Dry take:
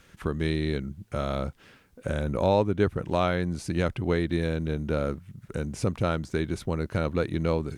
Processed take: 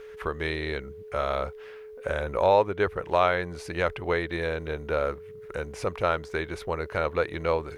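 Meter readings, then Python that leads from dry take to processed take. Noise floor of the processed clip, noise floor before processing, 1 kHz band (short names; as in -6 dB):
-44 dBFS, -59 dBFS, +5.0 dB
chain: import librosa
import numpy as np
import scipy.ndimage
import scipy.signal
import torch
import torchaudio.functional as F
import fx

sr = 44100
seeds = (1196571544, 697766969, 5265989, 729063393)

y = fx.graphic_eq(x, sr, hz=(125, 250, 500, 1000, 2000, 8000), db=(-10, -11, 4, 5, 5, -6))
y = y + 10.0 ** (-41.0 / 20.0) * np.sin(2.0 * np.pi * 430.0 * np.arange(len(y)) / sr)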